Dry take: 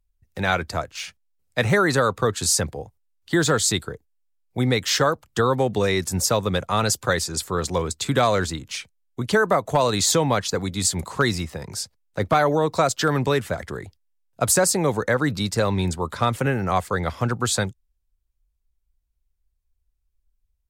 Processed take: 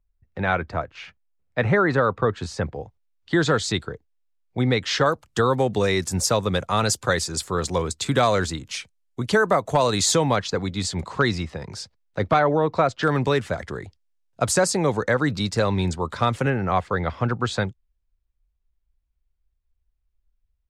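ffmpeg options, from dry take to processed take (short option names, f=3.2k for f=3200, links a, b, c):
-af "asetnsamples=n=441:p=0,asendcmd='2.74 lowpass f 4300;5.06 lowpass f 10000;10.36 lowpass f 4700;12.39 lowpass f 2700;13.03 lowpass f 6800;16.5 lowpass f 3400',lowpass=2.2k"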